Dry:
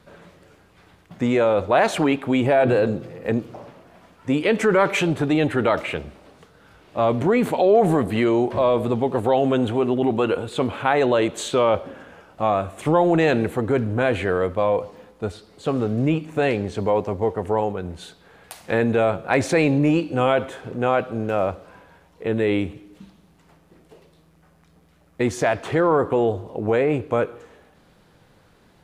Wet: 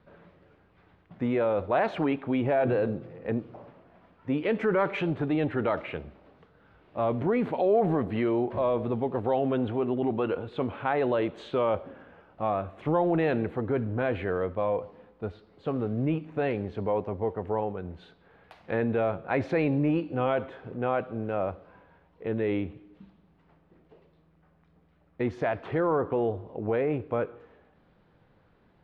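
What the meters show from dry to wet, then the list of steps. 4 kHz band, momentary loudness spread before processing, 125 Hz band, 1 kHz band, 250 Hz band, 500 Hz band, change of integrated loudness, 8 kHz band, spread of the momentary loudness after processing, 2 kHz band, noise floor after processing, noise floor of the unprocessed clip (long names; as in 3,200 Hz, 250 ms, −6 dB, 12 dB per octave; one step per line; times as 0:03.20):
−13.5 dB, 9 LU, −6.5 dB, −8.0 dB, −7.0 dB, −7.5 dB, −7.5 dB, below −30 dB, 9 LU, −9.5 dB, −64 dBFS, −56 dBFS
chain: high-frequency loss of the air 330 metres
level −6.5 dB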